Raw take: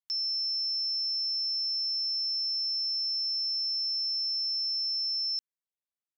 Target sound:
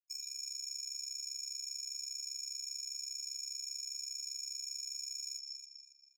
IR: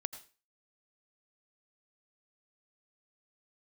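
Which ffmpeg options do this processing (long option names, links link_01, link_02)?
-filter_complex "[0:a]asplit=2[link_01][link_02];[1:a]atrim=start_sample=2205,lowpass=4900[link_03];[link_02][link_03]afir=irnorm=-1:irlink=0,volume=2.5dB[link_04];[link_01][link_04]amix=inputs=2:normalize=0,acrossover=split=5100[link_05][link_06];[link_06]acompressor=threshold=-36dB:ratio=4:attack=1:release=60[link_07];[link_05][link_07]amix=inputs=2:normalize=0,aeval=exprs='0.0106*(abs(mod(val(0)/0.0106+3,4)-2)-1)':channel_layout=same,afftdn=noise_reduction=18:noise_floor=-64,afftfilt=real='re*gte(hypot(re,im),0.001)':imag='im*gte(hypot(re,im),0.001)':win_size=1024:overlap=0.75,asplit=2[link_08][link_09];[link_09]adelay=267,lowpass=frequency=5000:poles=1,volume=-8dB,asplit=2[link_10][link_11];[link_11]adelay=267,lowpass=frequency=5000:poles=1,volume=0.43,asplit=2[link_12][link_13];[link_13]adelay=267,lowpass=frequency=5000:poles=1,volume=0.43,asplit=2[link_14][link_15];[link_15]adelay=267,lowpass=frequency=5000:poles=1,volume=0.43,asplit=2[link_16][link_17];[link_17]adelay=267,lowpass=frequency=5000:poles=1,volume=0.43[link_18];[link_08][link_10][link_12][link_14][link_16][link_18]amix=inputs=6:normalize=0,aeval=exprs='val(0)*sin(2*PI*34*n/s)':channel_layout=same,acompressor=threshold=-54dB:ratio=1.5,tremolo=f=25:d=0.621,highshelf=frequency=5100:gain=6.5,volume=11dB" -ar 32000 -c:a aac -b:a 96k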